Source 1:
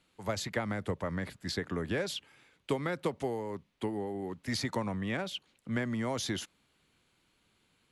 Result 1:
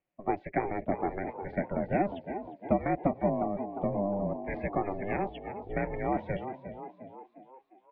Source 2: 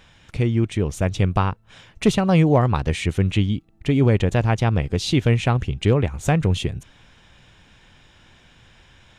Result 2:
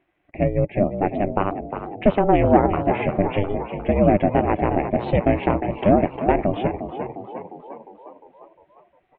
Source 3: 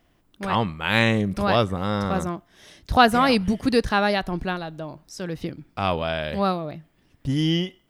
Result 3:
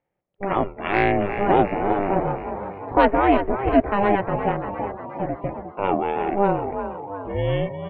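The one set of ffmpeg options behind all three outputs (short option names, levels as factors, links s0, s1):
-filter_complex "[0:a]highpass=160,equalizer=f=160:t=q:w=4:g=-4,equalizer=f=260:t=q:w=4:g=-5,equalizer=f=380:t=q:w=4:g=9,equalizer=f=540:t=q:w=4:g=8,equalizer=f=1400:t=q:w=4:g=-9,equalizer=f=2100:t=q:w=4:g=4,lowpass=f=2300:w=0.5412,lowpass=f=2300:w=1.3066,acontrast=25,aeval=exprs='val(0)*sin(2*PI*200*n/s)':c=same,asplit=9[s0][s1][s2][s3][s4][s5][s6][s7][s8];[s1]adelay=354,afreqshift=48,volume=0.335[s9];[s2]adelay=708,afreqshift=96,volume=0.204[s10];[s3]adelay=1062,afreqshift=144,volume=0.124[s11];[s4]adelay=1416,afreqshift=192,volume=0.0759[s12];[s5]adelay=1770,afreqshift=240,volume=0.0462[s13];[s6]adelay=2124,afreqshift=288,volume=0.0282[s14];[s7]adelay=2478,afreqshift=336,volume=0.0172[s15];[s8]adelay=2832,afreqshift=384,volume=0.0105[s16];[s0][s9][s10][s11][s12][s13][s14][s15][s16]amix=inputs=9:normalize=0,afftdn=nr=16:nf=-41,volume=0.794"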